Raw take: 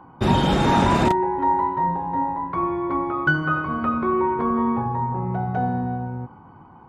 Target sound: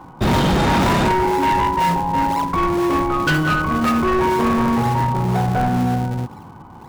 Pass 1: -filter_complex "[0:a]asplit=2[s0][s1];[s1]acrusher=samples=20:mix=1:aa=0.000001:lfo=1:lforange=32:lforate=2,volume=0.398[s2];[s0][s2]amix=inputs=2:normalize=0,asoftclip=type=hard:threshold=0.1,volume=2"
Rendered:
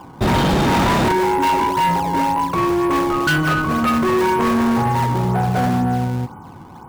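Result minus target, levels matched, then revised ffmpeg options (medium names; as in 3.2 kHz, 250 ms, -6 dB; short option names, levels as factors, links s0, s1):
decimation with a swept rate: distortion -9 dB
-filter_complex "[0:a]asplit=2[s0][s1];[s1]acrusher=samples=70:mix=1:aa=0.000001:lfo=1:lforange=112:lforate=2,volume=0.398[s2];[s0][s2]amix=inputs=2:normalize=0,asoftclip=type=hard:threshold=0.1,volume=2"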